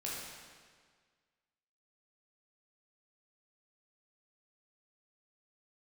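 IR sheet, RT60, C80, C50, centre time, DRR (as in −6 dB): 1.7 s, 1.0 dB, −1.5 dB, 104 ms, −6.0 dB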